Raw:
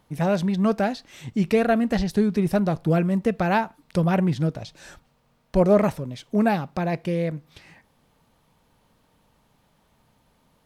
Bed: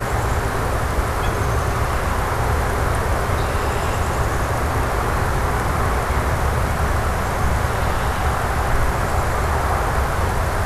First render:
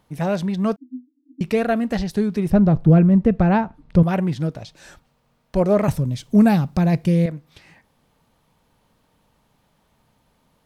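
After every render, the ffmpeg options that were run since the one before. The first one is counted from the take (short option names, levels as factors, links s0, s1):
-filter_complex "[0:a]asettb=1/sr,asplit=3[s0][s1][s2];[s0]atrim=end=0.764[s3];[s1]atrim=start=0.76:end=1.41,asetpts=PTS-STARTPTS,afade=t=in:d=0.004:c=qsin,afade=t=out:st=0.646:d=0.004:c=qsin,asuperpass=centerf=280:order=20:qfactor=3.8[s4];[s2]atrim=start=1.406[s5];[s3][s4]acrossfade=d=0.004:c1=hsin:c2=qsin[s6];[s6][s5]acrossfade=d=0.004:c1=qsin:c2=hsin,asettb=1/sr,asplit=3[s7][s8][s9];[s7]atrim=end=2.504[s10];[s8]atrim=start=2.5:end=4.03,asetpts=PTS-STARTPTS,afade=t=in:d=0.004:c=qsin,afade=t=out:st=1.526:d=0.004:c=qsin,aemphasis=mode=reproduction:type=riaa[s11];[s9]atrim=start=4.026[s12];[s10][s11]acrossfade=d=0.004:c1=hsin:c2=qsin[s13];[s13][s12]acrossfade=d=0.004:c1=qsin:c2=hsin,asettb=1/sr,asplit=3[s14][s15][s16];[s14]atrim=end=5.884[s17];[s15]atrim=start=5.88:end=7.26,asetpts=PTS-STARTPTS,afade=t=in:d=0.004:c=qsin,afade=t=out:st=1.376:d=0.004:c=qsin,bass=f=250:g=13,treble=f=4000:g=8[s18];[s16]atrim=start=7.256[s19];[s17][s18]acrossfade=d=0.004:c1=hsin:c2=qsin[s20];[s20][s19]acrossfade=d=0.004:c1=qsin:c2=hsin"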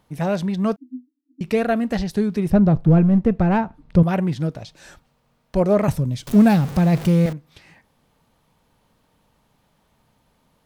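-filter_complex "[0:a]asplit=3[s0][s1][s2];[s0]afade=t=out:st=2.8:d=0.02[s3];[s1]aeval=exprs='if(lt(val(0),0),0.708*val(0),val(0))':c=same,afade=t=in:st=2.8:d=0.02,afade=t=out:st=3.57:d=0.02[s4];[s2]afade=t=in:st=3.57:d=0.02[s5];[s3][s4][s5]amix=inputs=3:normalize=0,asettb=1/sr,asplit=3[s6][s7][s8];[s6]atrim=end=6.274[s9];[s7]atrim=start=6.27:end=7.33,asetpts=PTS-STARTPTS,afade=t=in:d=0.004:c=qsin,afade=t=out:st=1.056:d=0.004:c=qsin,aeval=exprs='val(0)+0.5*0.0447*sgn(val(0))':c=same[s10];[s8]atrim=start=7.326[s11];[s9][s10]acrossfade=d=0.004:c1=hsin:c2=qsin[s12];[s12][s11]acrossfade=d=0.004:c1=qsin:c2=hsin,asplit=3[s13][s14][s15];[s13]atrim=end=1.21,asetpts=PTS-STARTPTS,afade=t=out:st=0.95:d=0.26:silence=0.158489[s16];[s14]atrim=start=1.21:end=1.27,asetpts=PTS-STARTPTS,volume=0.158[s17];[s15]atrim=start=1.27,asetpts=PTS-STARTPTS,afade=t=in:d=0.26:silence=0.158489[s18];[s16][s17][s18]concat=n=3:v=0:a=1"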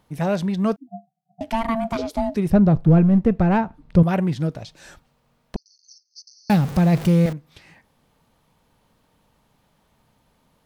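-filter_complex "[0:a]asplit=3[s0][s1][s2];[s0]afade=t=out:st=0.87:d=0.02[s3];[s1]aeval=exprs='val(0)*sin(2*PI*450*n/s)':c=same,afade=t=in:st=0.87:d=0.02,afade=t=out:st=2.34:d=0.02[s4];[s2]afade=t=in:st=2.34:d=0.02[s5];[s3][s4][s5]amix=inputs=3:normalize=0,asettb=1/sr,asplit=3[s6][s7][s8];[s6]atrim=end=5.564[s9];[s7]atrim=start=5.56:end=6.5,asetpts=PTS-STARTPTS,afade=t=in:d=0.004:c=qsin,afade=t=out:st=0.936:d=0.004:c=qsin,asuperpass=centerf=5200:order=20:qfactor=2.7[s10];[s8]atrim=start=6.496[s11];[s9][s10]acrossfade=d=0.004:c1=hsin:c2=qsin[s12];[s12][s11]acrossfade=d=0.004:c1=qsin:c2=hsin"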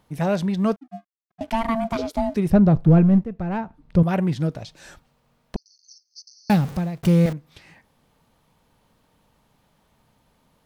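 -filter_complex "[0:a]asettb=1/sr,asplit=3[s0][s1][s2];[s0]atrim=end=0.554[s3];[s1]atrim=start=0.55:end=2.36,asetpts=PTS-STARTPTS,afade=t=in:d=0.004:c=qsin,afade=t=out:st=1.806:d=0.004:c=qsin,aeval=exprs='sgn(val(0))*max(abs(val(0))-0.00188,0)':c=same[s4];[s2]atrim=start=2.356[s5];[s3][s4]acrossfade=d=0.004:c1=hsin:c2=qsin[s6];[s6][s5]acrossfade=d=0.004:c1=qsin:c2=hsin,asplit=3[s7][s8][s9];[s7]atrim=end=3.24,asetpts=PTS-STARTPTS,afade=t=out:st=3.236:d=0.004:c=hsin:silence=0.177828[s10];[s8]atrim=start=3.24:end=7.03,asetpts=PTS-STARTPTS,afade=t=in:d=1.06:silence=0.177828,afade=t=out:st=3.27:d=0.52[s11];[s9]atrim=start=7.03,asetpts=PTS-STARTPTS,afade=t=in:d=0.004:c=hsin[s12];[s10][s11][s12]concat=n=3:v=0:a=1"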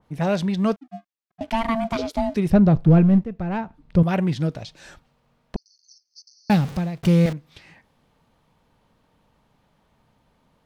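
-af "lowpass=f=3800:p=1,adynamicequalizer=threshold=0.00794:dfrequency=2100:dqfactor=0.7:tfrequency=2100:tqfactor=0.7:attack=5:release=100:ratio=0.375:range=3.5:mode=boostabove:tftype=highshelf"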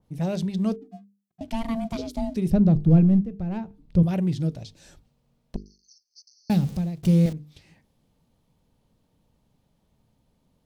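-af "equalizer=f=1400:w=0.48:g=-14,bandreject=f=50:t=h:w=6,bandreject=f=100:t=h:w=6,bandreject=f=150:t=h:w=6,bandreject=f=200:t=h:w=6,bandreject=f=250:t=h:w=6,bandreject=f=300:t=h:w=6,bandreject=f=350:t=h:w=6,bandreject=f=400:t=h:w=6,bandreject=f=450:t=h:w=6"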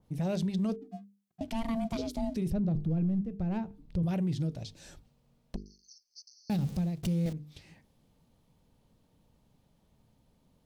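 -af "acompressor=threshold=0.0224:ratio=1.5,alimiter=limit=0.0631:level=0:latency=1:release=12"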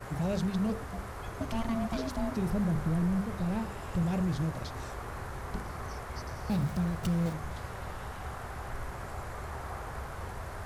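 -filter_complex "[1:a]volume=0.1[s0];[0:a][s0]amix=inputs=2:normalize=0"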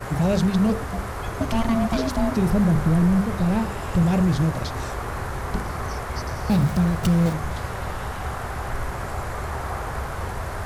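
-af "volume=3.35"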